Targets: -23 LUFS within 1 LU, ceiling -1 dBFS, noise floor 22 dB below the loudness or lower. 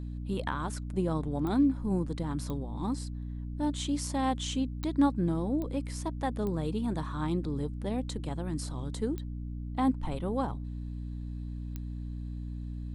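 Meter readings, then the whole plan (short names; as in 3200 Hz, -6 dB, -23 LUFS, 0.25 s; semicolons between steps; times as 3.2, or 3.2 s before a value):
clicks 7; hum 60 Hz; harmonics up to 300 Hz; hum level -35 dBFS; loudness -33.0 LUFS; peak -15.0 dBFS; loudness target -23.0 LUFS
-> de-click; notches 60/120/180/240/300 Hz; gain +10 dB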